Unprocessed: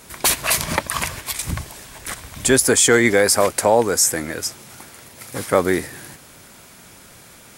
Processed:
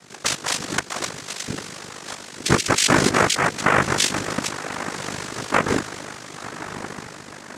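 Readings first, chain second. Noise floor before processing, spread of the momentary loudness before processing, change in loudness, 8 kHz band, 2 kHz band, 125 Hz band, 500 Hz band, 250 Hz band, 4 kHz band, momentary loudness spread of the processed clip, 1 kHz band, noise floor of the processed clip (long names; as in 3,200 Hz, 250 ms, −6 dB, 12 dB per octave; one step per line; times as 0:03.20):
−45 dBFS, 18 LU, −4.0 dB, −6.0 dB, 0.0 dB, +1.0 dB, −7.0 dB, −2.0 dB, +0.5 dB, 18 LU, +1.0 dB, −41 dBFS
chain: feedback delay with all-pass diffusion 1,125 ms, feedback 54%, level −11.5 dB
amplitude modulation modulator 50 Hz, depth 90%
cochlear-implant simulation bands 3
level +1.5 dB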